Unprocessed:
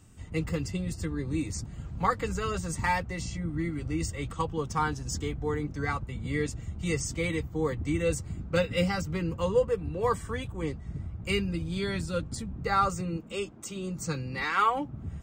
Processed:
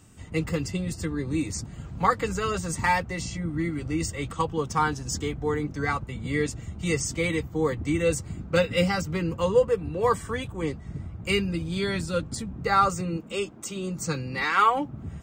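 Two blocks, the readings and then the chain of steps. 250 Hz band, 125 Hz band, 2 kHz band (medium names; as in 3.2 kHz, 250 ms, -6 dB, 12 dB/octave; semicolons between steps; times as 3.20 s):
+3.5 dB, +2.0 dB, +4.5 dB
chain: bass shelf 79 Hz -9.5 dB; trim +4.5 dB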